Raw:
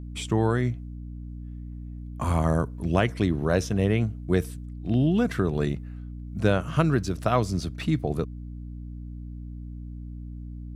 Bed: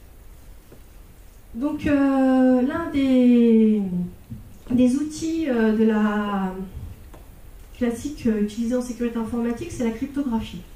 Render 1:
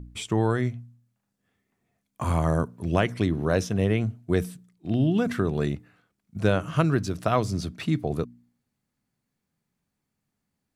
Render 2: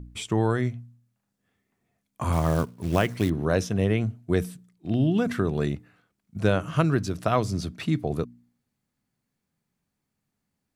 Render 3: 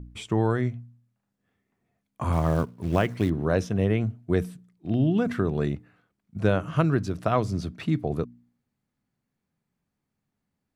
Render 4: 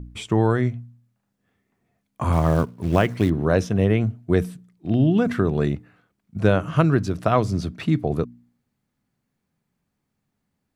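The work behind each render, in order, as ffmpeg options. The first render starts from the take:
-af "bandreject=f=60:t=h:w=4,bandreject=f=120:t=h:w=4,bandreject=f=180:t=h:w=4,bandreject=f=240:t=h:w=4,bandreject=f=300:t=h:w=4"
-filter_complex "[0:a]asettb=1/sr,asplit=3[a][b][c];[a]atrim=end=2.324[d];[b]atrim=start=2.32:end=3.3,asetpts=PTS-STARTPTS,afade=t=in:d=0.004:c=qsin,afade=t=out:st=0.976:d=0.004:c=qsin,acrusher=bits=5:mode=log:mix=0:aa=0.000001[e];[c]atrim=start=3.296[f];[d][e]acrossfade=d=0.004:c1=hsin:c2=qsin[g];[g][f]acrossfade=d=0.004:c1=qsin:c2=hsin"
-af "highshelf=f=3.5k:g=-8.5"
-af "volume=4.5dB"

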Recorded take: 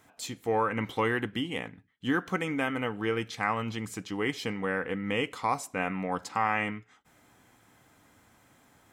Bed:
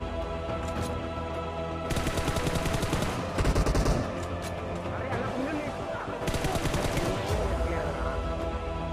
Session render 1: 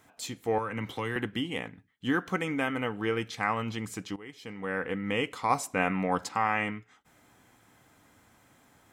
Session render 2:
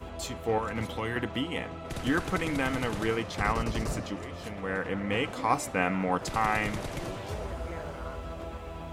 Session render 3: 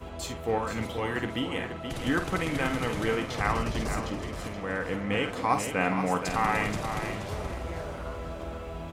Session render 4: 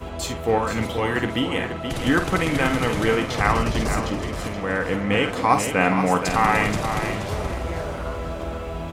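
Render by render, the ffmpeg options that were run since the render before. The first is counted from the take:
-filter_complex "[0:a]asettb=1/sr,asplit=3[a][b][c];[a]atrim=end=0.584[d];[b]atrim=start=0.58:end=1.16,asetpts=PTS-STARTPTS,afade=t=in:d=0.004:c=qsin,afade=t=out:st=0.576:d=0.004:c=qsin,acrossover=split=150|3000[e][f][g];[f]acompressor=threshold=-35dB:ratio=2:attack=3.2:release=140:knee=2.83:detection=peak[h];[e][h][g]amix=inputs=3:normalize=0[i];[c]atrim=start=1.156[j];[d][i]acrossfade=d=0.004:c1=hsin:c2=qsin[k];[k][j]acrossfade=d=0.004:c1=qsin:c2=hsin,asplit=4[l][m][n][o];[l]atrim=end=4.16,asetpts=PTS-STARTPTS,afade=t=out:st=4.156:d=0.004:c=hsin:silence=0.141254[p];[m]atrim=start=4.16:end=5.502,asetpts=PTS-STARTPTS,afade=t=in:d=0.65:c=qua:silence=0.141254[q];[n]atrim=start=5.498:end=6.292,asetpts=PTS-STARTPTS,volume=3.5dB[r];[o]atrim=start=6.288[s];[p][q]concat=n=2:v=0:a=1[t];[t][r]acrossfade=d=0.004:c1=hsin:c2=hsin[u];[u][s]acrossfade=d=0.004:c1=hsin:c2=hsin"
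-filter_complex "[1:a]volume=-7.5dB[a];[0:a][a]amix=inputs=2:normalize=0"
-filter_complex "[0:a]asplit=2[a][b];[b]adelay=49,volume=-9dB[c];[a][c]amix=inputs=2:normalize=0,aecho=1:1:476|952|1428:0.376|0.105|0.0295"
-af "volume=7.5dB"

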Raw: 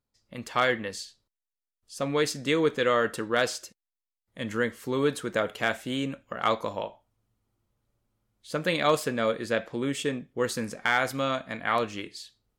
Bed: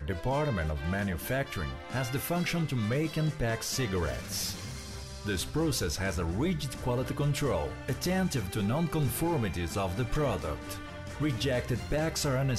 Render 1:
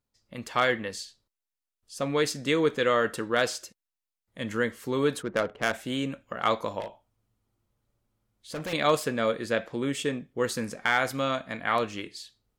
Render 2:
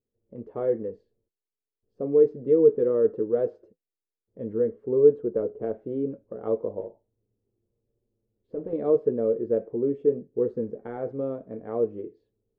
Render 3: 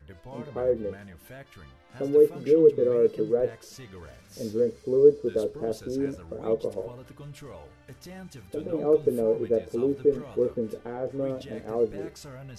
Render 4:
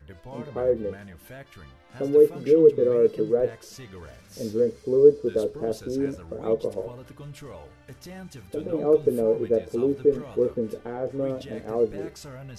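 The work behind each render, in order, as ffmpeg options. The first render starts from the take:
-filter_complex "[0:a]asplit=3[a][b][c];[a]afade=t=out:st=5.21:d=0.02[d];[b]adynamicsmooth=sensitivity=2.5:basefreq=880,afade=t=in:st=5.21:d=0.02,afade=t=out:st=5.72:d=0.02[e];[c]afade=t=in:st=5.72:d=0.02[f];[d][e][f]amix=inputs=3:normalize=0,asettb=1/sr,asplit=3[g][h][i];[g]atrim=end=6.804[j];[h]atrim=start=6.8:end=8.73,asetpts=PTS-STARTPTS,afade=t=in:d=0.004:c=qsin,afade=t=out:st=1.926:d=0.004:c=qsin,asoftclip=type=hard:threshold=-31dB[k];[i]atrim=start=8.726[l];[j][k]acrossfade=d=0.004:c1=hsin:c2=qsin[m];[m][l]acrossfade=d=0.004:c1=qsin:c2=hsin"
-af "flanger=delay=8.3:depth=1.7:regen=-48:speed=0.75:shape=triangular,lowpass=f=430:t=q:w=4.9"
-filter_complex "[1:a]volume=-14dB[a];[0:a][a]amix=inputs=2:normalize=0"
-af "volume=2dB"

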